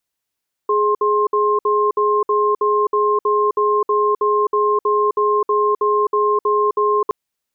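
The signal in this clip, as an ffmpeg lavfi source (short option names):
-f lavfi -i "aevalsrc='0.158*(sin(2*PI*418*t)+sin(2*PI*1060*t))*clip(min(mod(t,0.32),0.26-mod(t,0.32))/0.005,0,1)':d=6.42:s=44100"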